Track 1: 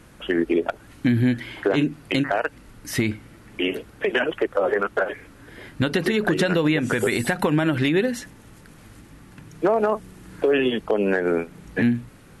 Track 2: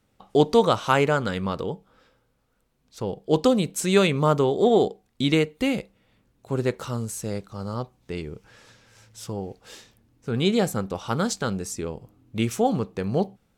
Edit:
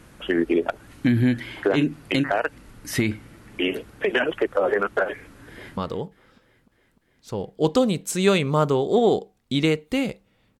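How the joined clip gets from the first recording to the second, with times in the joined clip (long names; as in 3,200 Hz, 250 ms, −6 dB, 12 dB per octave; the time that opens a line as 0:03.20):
track 1
0:05.51–0:05.77: delay throw 300 ms, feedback 75%, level −16 dB
0:05.77: continue with track 2 from 0:01.46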